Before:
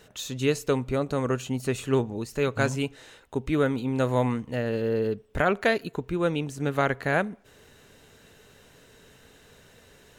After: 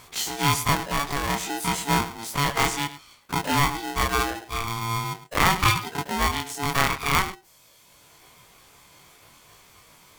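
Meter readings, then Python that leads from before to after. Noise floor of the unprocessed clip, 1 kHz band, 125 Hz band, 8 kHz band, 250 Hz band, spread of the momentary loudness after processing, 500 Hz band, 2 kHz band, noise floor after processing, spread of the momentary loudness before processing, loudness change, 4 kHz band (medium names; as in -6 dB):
-56 dBFS, +8.5 dB, +0.5 dB, +12.0 dB, -3.0 dB, 8 LU, -8.0 dB, +5.0 dB, -56 dBFS, 7 LU, +2.5 dB, +11.5 dB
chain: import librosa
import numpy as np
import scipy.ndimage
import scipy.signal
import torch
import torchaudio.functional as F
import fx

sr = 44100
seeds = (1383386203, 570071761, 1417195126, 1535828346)

p1 = fx.spec_dilate(x, sr, span_ms=60)
p2 = fx.low_shelf(p1, sr, hz=230.0, db=-6.5)
p3 = fx.dereverb_blind(p2, sr, rt60_s=1.3)
p4 = fx.high_shelf(p3, sr, hz=8800.0, db=9.0)
p5 = p4 + fx.echo_single(p4, sr, ms=104, db=-14.0, dry=0)
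p6 = p5 * np.sign(np.sin(2.0 * np.pi * 570.0 * np.arange(len(p5)) / sr))
y = p6 * librosa.db_to_amplitude(1.5)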